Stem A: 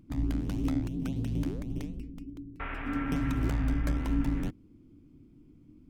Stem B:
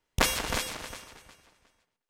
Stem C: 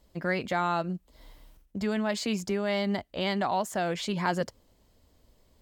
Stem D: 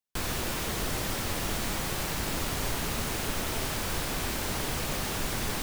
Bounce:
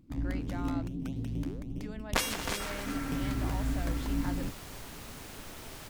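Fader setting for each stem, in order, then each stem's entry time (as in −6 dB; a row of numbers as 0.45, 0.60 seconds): −3.5, −4.5, −15.5, −14.0 decibels; 0.00, 1.95, 0.00, 2.10 seconds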